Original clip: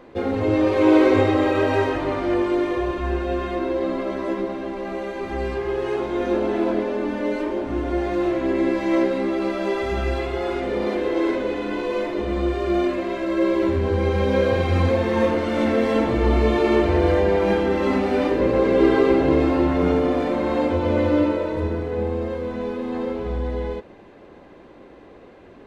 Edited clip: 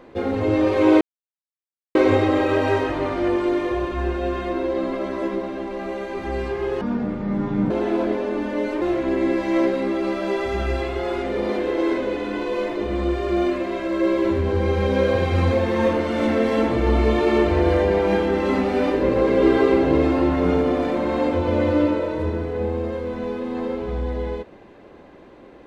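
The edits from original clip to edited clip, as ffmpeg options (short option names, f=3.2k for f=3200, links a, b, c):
-filter_complex "[0:a]asplit=5[a][b][c][d][e];[a]atrim=end=1.01,asetpts=PTS-STARTPTS,afade=t=out:st=1.006:d=0.004:c=hsin,apad=pad_dur=0.94[f];[b]atrim=start=1.01:end=5.874,asetpts=PTS-STARTPTS,afade=t=in:d=0.004:c=hsin[g];[c]atrim=start=5.87:end=6.38,asetpts=PTS-STARTPTS,asetrate=25137,aresample=44100[h];[d]atrim=start=6.376:end=7.492[i];[e]atrim=start=8.188[j];[f][g]concat=n=2:v=0:a=1[k];[k][h]acrossfade=d=0.004:c1=hsin:c2=hsin[l];[l][i]acrossfade=d=0.004:c1=hsin:c2=hsin[m];[m][j]acrossfade=d=0.004:c1=hsin:c2=hsin"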